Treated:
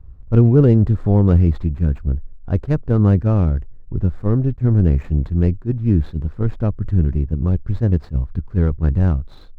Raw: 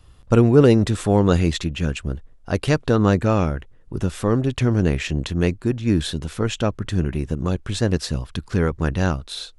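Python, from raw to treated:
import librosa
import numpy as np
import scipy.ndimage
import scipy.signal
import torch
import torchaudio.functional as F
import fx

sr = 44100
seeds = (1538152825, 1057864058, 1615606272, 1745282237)

y = scipy.signal.medfilt(x, 15)
y = fx.riaa(y, sr, side='playback')
y = fx.attack_slew(y, sr, db_per_s=360.0)
y = F.gain(torch.from_numpy(y), -6.0).numpy()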